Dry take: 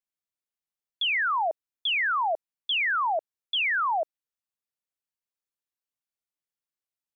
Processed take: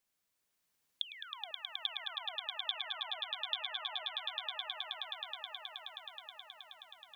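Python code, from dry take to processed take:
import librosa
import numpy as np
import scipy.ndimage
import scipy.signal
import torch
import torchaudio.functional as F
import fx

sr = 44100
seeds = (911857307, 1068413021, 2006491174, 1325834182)

y = fx.gate_flip(x, sr, shuts_db=-30.0, range_db=-36)
y = fx.echo_swell(y, sr, ms=106, loudest=8, wet_db=-5)
y = F.gain(torch.from_numpy(y), 9.5).numpy()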